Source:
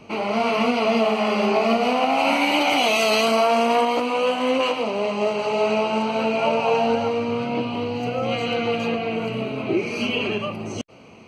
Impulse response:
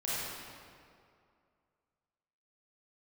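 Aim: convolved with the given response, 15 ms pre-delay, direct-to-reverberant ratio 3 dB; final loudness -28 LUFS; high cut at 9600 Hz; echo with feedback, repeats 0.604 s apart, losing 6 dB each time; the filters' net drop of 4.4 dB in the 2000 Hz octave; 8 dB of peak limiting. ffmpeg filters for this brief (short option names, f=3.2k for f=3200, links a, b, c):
-filter_complex "[0:a]lowpass=9.6k,equalizer=f=2k:t=o:g=-6,alimiter=limit=-16dB:level=0:latency=1,aecho=1:1:604|1208|1812|2416|3020|3624:0.501|0.251|0.125|0.0626|0.0313|0.0157,asplit=2[a][b];[1:a]atrim=start_sample=2205,adelay=15[c];[b][c]afir=irnorm=-1:irlink=0,volume=-9.5dB[d];[a][d]amix=inputs=2:normalize=0,volume=-6dB"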